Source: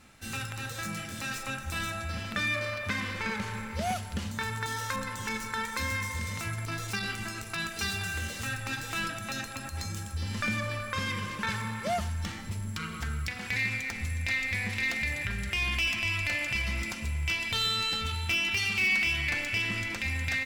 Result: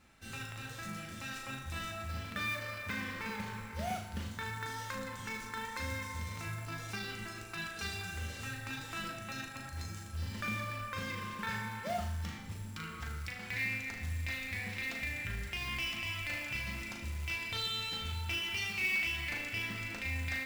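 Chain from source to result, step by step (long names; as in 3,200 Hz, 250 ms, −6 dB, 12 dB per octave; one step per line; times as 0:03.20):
high-shelf EQ 6,700 Hz −7 dB
tuned comb filter 170 Hz, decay 1 s, harmonics all, mix 60%
floating-point word with a short mantissa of 2 bits
flutter between parallel walls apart 6.5 metres, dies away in 0.41 s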